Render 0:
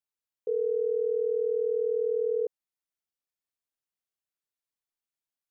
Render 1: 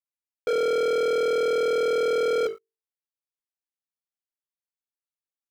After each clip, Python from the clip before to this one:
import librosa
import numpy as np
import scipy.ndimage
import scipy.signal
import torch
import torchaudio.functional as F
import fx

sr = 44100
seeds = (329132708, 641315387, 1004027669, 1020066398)

y = fx.hum_notches(x, sr, base_hz=50, count=9)
y = fx.leveller(y, sr, passes=5)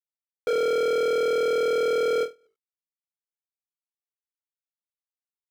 y = np.where(np.abs(x) >= 10.0 ** (-38.0 / 20.0), x, 0.0)
y = fx.end_taper(y, sr, db_per_s=280.0)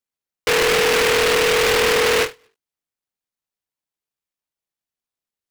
y = fx.noise_mod_delay(x, sr, seeds[0], noise_hz=1800.0, depth_ms=0.26)
y = y * librosa.db_to_amplitude(6.5)